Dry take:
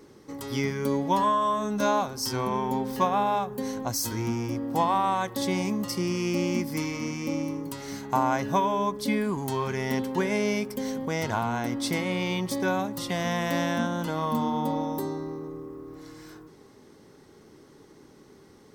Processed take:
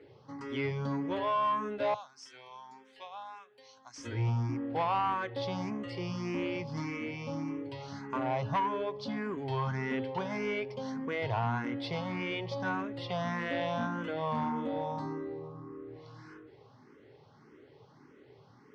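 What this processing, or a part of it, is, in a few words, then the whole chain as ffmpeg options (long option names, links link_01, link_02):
barber-pole phaser into a guitar amplifier: -filter_complex "[0:a]asettb=1/sr,asplit=3[link_01][link_02][link_03];[link_01]atrim=end=1.944[link_04];[link_02]atrim=start=1.94:end=3.98,asetpts=PTS-STARTPTS,afade=type=in:duration=0.004:curve=qsin,afade=type=out:start_time=2.036:duration=0.004:curve=qsin,aderivative[link_05];[link_03]atrim=start=3.976[link_06];[link_04][link_05]acrossfade=duration=0.004:curve1=hsin:curve2=qsin[link_07];[link_07][link_06]acrossfade=duration=0.004:curve1=qsin:curve2=hsin,asplit=2[link_08][link_09];[link_09]afreqshift=1.7[link_10];[link_08][link_10]amix=inputs=2:normalize=1,asoftclip=type=tanh:threshold=-24dB,highpass=100,equalizer=frequency=120:width_type=q:width=4:gain=8,equalizer=frequency=200:width_type=q:width=4:gain=-9,equalizer=frequency=330:width_type=q:width=4:gain=-5,equalizer=frequency=3800:width_type=q:width=4:gain=-5,lowpass=frequency=4200:width=0.5412,lowpass=frequency=4200:width=1.3066"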